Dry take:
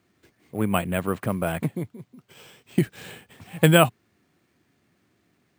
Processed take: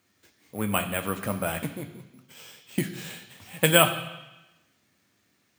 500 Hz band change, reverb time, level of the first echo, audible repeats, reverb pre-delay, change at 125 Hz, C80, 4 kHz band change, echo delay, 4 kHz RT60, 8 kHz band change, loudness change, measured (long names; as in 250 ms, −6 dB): −3.0 dB, 1.0 s, no echo audible, no echo audible, 3 ms, −7.0 dB, 12.5 dB, +3.0 dB, no echo audible, 1.1 s, +4.0 dB, −2.0 dB